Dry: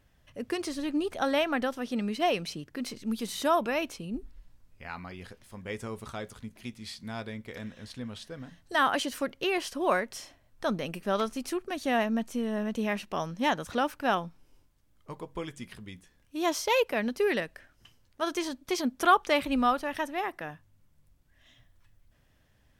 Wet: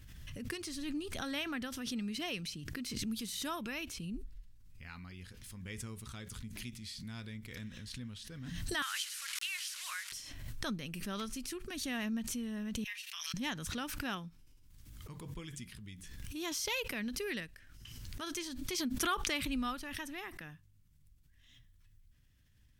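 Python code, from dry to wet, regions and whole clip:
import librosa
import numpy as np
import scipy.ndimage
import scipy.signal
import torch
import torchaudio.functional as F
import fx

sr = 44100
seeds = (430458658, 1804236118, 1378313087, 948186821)

y = fx.chain(x, sr, fx.delta_mod(bps=64000, step_db=-32.0),
    fx.highpass(hz=1300.0, slope=24), at=(8.82, 10.12))
y = fx.chain(y, sr, fx.transient(attack_db=11, sustain_db=3),
    fx.ladder_highpass(hz=1600.0, resonance_pct=20),
    fx.comb(ms=5.9, depth=0.78), at=(12.84, 13.34))
y = fx.tone_stack(y, sr, knobs='6-0-2')
y = fx.pre_swell(y, sr, db_per_s=30.0)
y = F.gain(torch.from_numpy(y), 11.0).numpy()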